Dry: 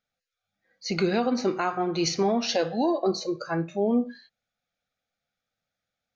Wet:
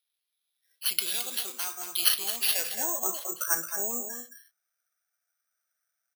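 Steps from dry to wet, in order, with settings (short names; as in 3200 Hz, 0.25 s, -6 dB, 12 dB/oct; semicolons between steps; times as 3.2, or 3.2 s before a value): echo 0.219 s -8 dB; band-pass sweep 3700 Hz -> 1500 Hz, 2.25–2.98; careless resampling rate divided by 6×, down none, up zero stuff; gain +2.5 dB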